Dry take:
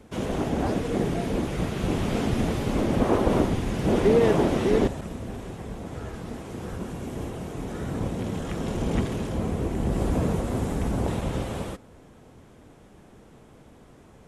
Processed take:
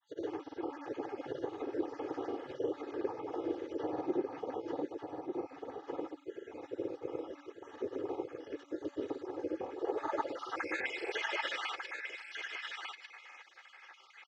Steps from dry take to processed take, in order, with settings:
time-frequency cells dropped at random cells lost 56%
Chebyshev band-pass filter 130–6,000 Hz, order 3
hum removal 285 Hz, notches 3
gate on every frequency bin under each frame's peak −10 dB weak
bass and treble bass −9 dB, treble +4 dB
comb filter 2.4 ms, depth 70%
downward compressor 12 to 1, threshold −41 dBFS, peak gain reduction 18.5 dB
granular cloud, pitch spread up and down by 0 semitones
band-pass filter sweep 300 Hz → 2,000 Hz, 0:09.66–0:10.75
single-tap delay 1,197 ms −5 dB
level +17 dB

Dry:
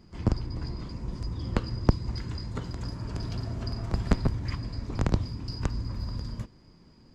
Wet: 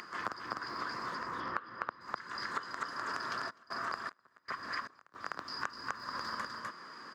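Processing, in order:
floating-point word with a short mantissa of 6 bits
0:01.15–0:02.01: low-pass filter 2,800 Hz 12 dB per octave
upward compression, threshold −43 dBFS
high-pass filter 530 Hz 12 dB per octave
flat-topped bell 1,400 Hz +14.5 dB 1 octave
single-tap delay 252 ms −3.5 dB
downward compressor 16 to 1, threshold −38 dBFS, peak gain reduction 22 dB
0:03.49–0:05.14: gate pattern "x..xx..x" 77 BPM −24 dB
highs frequency-modulated by the lows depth 0.42 ms
level +4.5 dB

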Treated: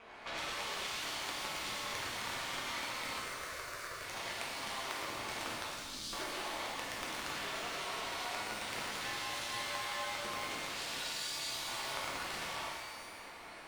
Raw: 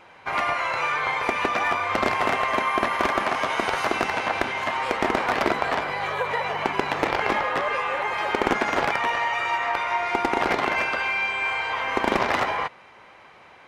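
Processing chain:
phase distortion by the signal itself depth 0.73 ms
0:05.65–0:06.13: inverse Chebyshev band-stop filter 540–1,400 Hz, stop band 70 dB
downward compressor 8 to 1, threshold −36 dBFS, peak gain reduction 19 dB
flanger 0.87 Hz, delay 4.9 ms, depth 8.4 ms, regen +68%
ring modulation 120 Hz
0:03.17–0:04.02: phaser with its sweep stopped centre 840 Hz, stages 6
reverb with rising layers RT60 1.6 s, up +12 semitones, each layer −8 dB, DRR −4.5 dB

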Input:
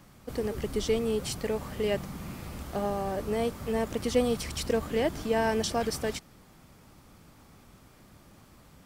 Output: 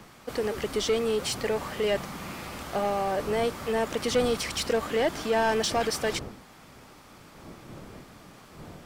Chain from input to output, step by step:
wind on the microphone 190 Hz −43 dBFS
mid-hump overdrive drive 16 dB, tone 5,200 Hz, clips at −14 dBFS
level −1.5 dB

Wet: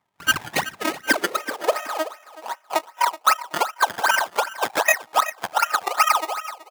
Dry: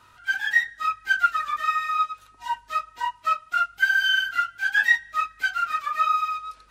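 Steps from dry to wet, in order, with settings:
noise gate with hold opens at −42 dBFS
0:01.36–0:02.76: parametric band 970 Hz −14 dB 0.78 octaves
transient designer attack +8 dB, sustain −4 dB
sample-and-hold swept by an LFO 19×, swing 100% 2.6 Hz
high-pass filter sweep 890 Hz → 91 Hz, 0:00.59–0:03.51
half-wave rectification
high-pass filter sweep 110 Hz → 800 Hz, 0:00.37–0:01.89
on a send: repeating echo 376 ms, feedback 26%, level −17 dB
on the sum: boost into a limiter +8.5 dB
level −5 dB

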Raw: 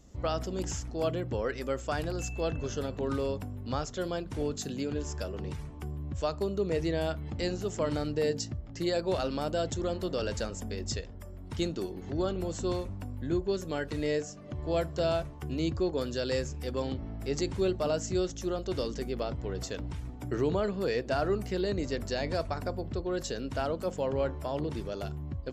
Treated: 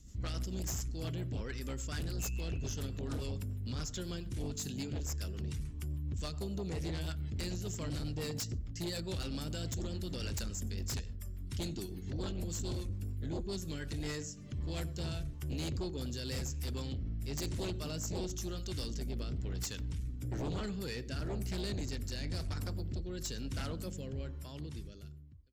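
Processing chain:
fade-out on the ending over 1.91 s
high-shelf EQ 6,900 Hz +8.5 dB
on a send at −24 dB: convolution reverb RT60 0.40 s, pre-delay 78 ms
on the sum: rotating-speaker cabinet horn 7 Hz, later 1 Hz, at 0:13.52
guitar amp tone stack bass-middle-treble 6-0-2
feedback echo with a band-pass in the loop 93 ms, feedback 44%, band-pass 410 Hz, level −16 dB
sine wavefolder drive 12 dB, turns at −34 dBFS
level +1 dB

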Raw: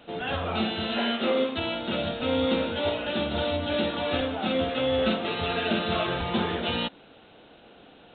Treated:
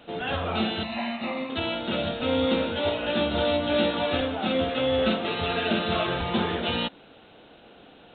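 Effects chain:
0:00.83–0:01.50: phaser with its sweep stopped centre 2,200 Hz, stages 8
0:03.01–0:04.06: double-tracking delay 17 ms −7 dB
level +1 dB

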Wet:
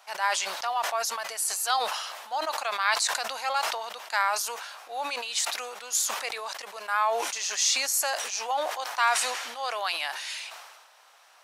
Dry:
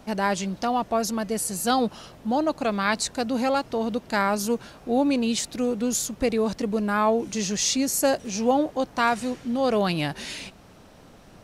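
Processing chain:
high-pass filter 830 Hz 24 dB per octave
level that may fall only so fast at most 41 dB per second

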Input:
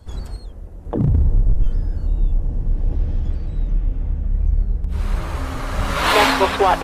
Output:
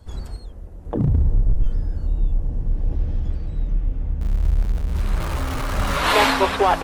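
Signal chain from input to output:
0:04.21–0:05.98: converter with a step at zero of −25.5 dBFS
level −2 dB

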